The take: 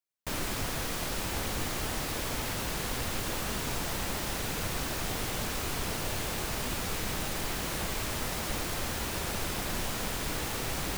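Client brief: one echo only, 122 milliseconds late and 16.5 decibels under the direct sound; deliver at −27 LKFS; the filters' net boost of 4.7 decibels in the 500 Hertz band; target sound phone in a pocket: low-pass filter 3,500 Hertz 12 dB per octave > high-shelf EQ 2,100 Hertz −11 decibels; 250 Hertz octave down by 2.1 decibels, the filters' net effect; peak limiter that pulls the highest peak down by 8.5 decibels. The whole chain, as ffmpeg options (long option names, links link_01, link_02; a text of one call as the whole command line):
ffmpeg -i in.wav -af "equalizer=frequency=250:width_type=o:gain=-5.5,equalizer=frequency=500:width_type=o:gain=8,alimiter=level_in=2.5dB:limit=-24dB:level=0:latency=1,volume=-2.5dB,lowpass=3500,highshelf=frequency=2100:gain=-11,aecho=1:1:122:0.15,volume=12.5dB" out.wav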